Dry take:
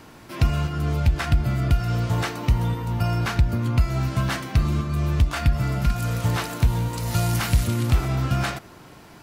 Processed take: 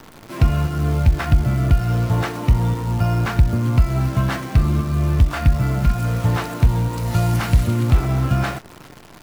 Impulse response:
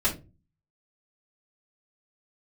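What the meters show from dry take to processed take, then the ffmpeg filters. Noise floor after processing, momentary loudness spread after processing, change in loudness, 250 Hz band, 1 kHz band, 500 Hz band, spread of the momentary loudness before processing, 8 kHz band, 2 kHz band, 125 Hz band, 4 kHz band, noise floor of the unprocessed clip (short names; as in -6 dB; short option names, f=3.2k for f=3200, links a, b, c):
-43 dBFS, 3 LU, +4.0 dB, +4.5 dB, +3.0 dB, +4.0 dB, 3 LU, -1.5 dB, +1.5 dB, +4.5 dB, -1.0 dB, -46 dBFS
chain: -af "highshelf=f=2.5k:g=-9.5,acrusher=bits=8:dc=4:mix=0:aa=0.000001,volume=4.5dB"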